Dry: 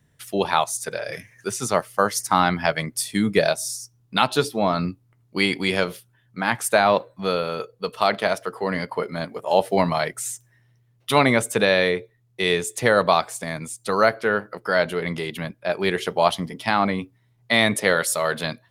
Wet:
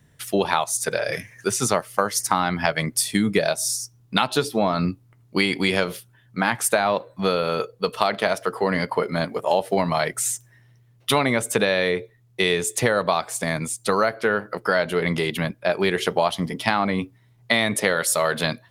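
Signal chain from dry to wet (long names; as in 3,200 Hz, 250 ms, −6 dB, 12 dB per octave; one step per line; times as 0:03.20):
downward compressor 6 to 1, threshold −22 dBFS, peak gain reduction 10.5 dB
level +5.5 dB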